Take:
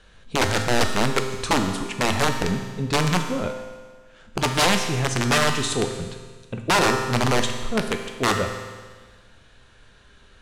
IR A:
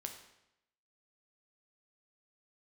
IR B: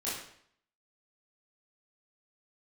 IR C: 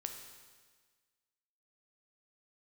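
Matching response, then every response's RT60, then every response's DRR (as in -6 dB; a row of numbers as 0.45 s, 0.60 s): C; 0.85 s, 0.65 s, 1.5 s; 4.0 dB, -9.5 dB, 4.5 dB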